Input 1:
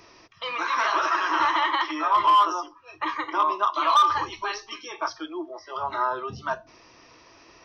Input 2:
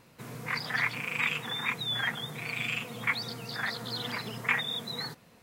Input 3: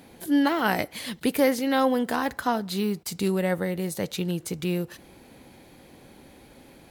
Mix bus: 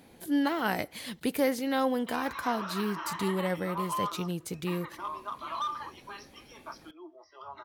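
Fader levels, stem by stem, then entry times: -15.0 dB, mute, -5.5 dB; 1.65 s, mute, 0.00 s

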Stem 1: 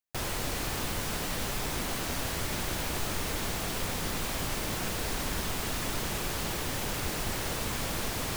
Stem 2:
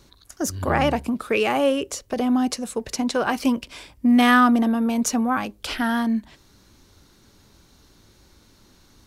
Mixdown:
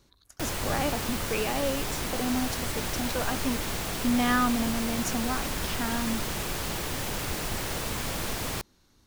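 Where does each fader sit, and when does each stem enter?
+1.0 dB, -9.5 dB; 0.25 s, 0.00 s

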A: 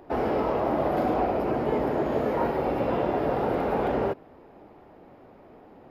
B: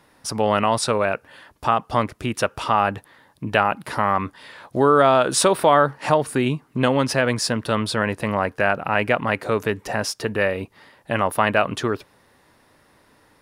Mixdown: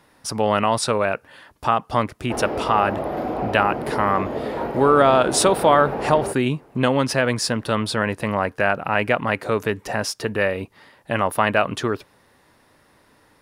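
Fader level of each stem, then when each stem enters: -1.0 dB, 0.0 dB; 2.20 s, 0.00 s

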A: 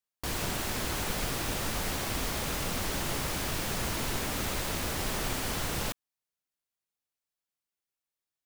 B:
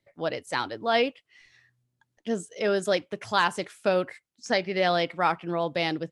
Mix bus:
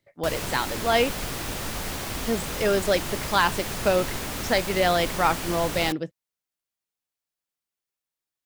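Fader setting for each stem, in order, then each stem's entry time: +1.0 dB, +2.0 dB; 0.00 s, 0.00 s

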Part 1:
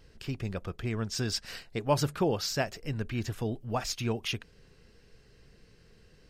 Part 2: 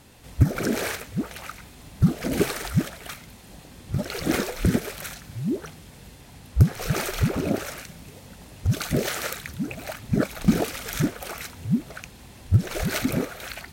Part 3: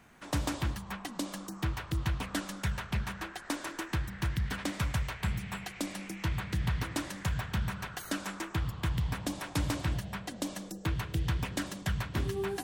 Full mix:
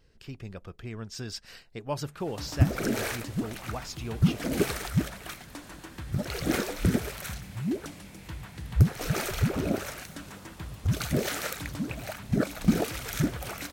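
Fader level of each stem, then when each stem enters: -6.0 dB, -3.5 dB, -8.5 dB; 0.00 s, 2.20 s, 2.05 s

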